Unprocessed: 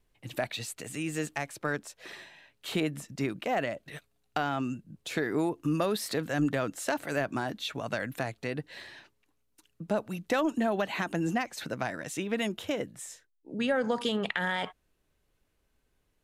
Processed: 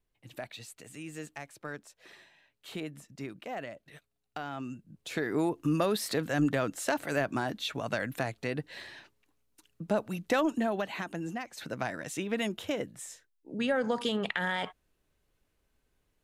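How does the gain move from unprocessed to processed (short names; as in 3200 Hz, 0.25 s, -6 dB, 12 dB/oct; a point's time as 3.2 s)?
4.37 s -9 dB
5.5 s +0.5 dB
10.39 s +0.5 dB
11.36 s -8 dB
11.8 s -1 dB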